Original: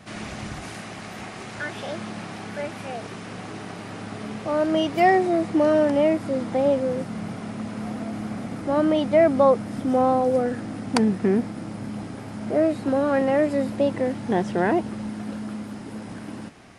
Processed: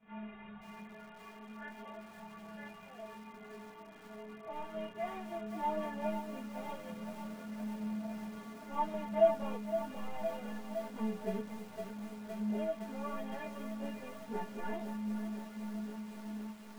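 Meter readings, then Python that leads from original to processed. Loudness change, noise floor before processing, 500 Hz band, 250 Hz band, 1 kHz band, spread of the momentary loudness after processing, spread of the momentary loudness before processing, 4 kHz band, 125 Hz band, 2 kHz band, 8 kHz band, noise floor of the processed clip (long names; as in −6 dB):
−16.5 dB, −37 dBFS, −16.0 dB, −16.0 dB, −14.5 dB, 14 LU, 17 LU, −17.5 dB, −16.5 dB, −17.5 dB, −16.0 dB, −53 dBFS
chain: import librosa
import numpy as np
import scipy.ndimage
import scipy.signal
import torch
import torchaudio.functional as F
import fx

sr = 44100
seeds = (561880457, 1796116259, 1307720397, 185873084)

y = fx.cvsd(x, sr, bps=16000)
y = fx.peak_eq(y, sr, hz=930.0, db=5.5, octaves=0.96)
y = fx.stiff_resonator(y, sr, f0_hz=210.0, decay_s=0.24, stiffness=0.008)
y = fx.chorus_voices(y, sr, voices=4, hz=0.15, base_ms=23, depth_ms=4.0, mix_pct=65)
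y = fx.echo_crushed(y, sr, ms=513, feedback_pct=80, bits=8, wet_db=-9.5)
y = y * 10.0 ** (-3.0 / 20.0)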